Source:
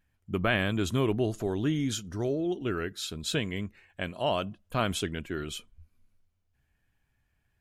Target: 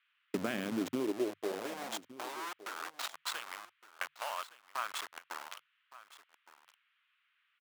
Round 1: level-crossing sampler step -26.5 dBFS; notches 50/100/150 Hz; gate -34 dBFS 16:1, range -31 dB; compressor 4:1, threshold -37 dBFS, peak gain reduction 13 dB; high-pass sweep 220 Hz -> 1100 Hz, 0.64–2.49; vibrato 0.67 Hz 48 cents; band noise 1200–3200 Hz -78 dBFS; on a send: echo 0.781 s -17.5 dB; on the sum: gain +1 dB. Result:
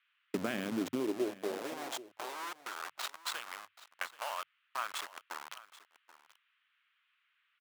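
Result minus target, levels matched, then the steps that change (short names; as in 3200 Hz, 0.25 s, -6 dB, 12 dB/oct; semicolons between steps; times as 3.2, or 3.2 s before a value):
echo 0.384 s early
change: echo 1.165 s -17.5 dB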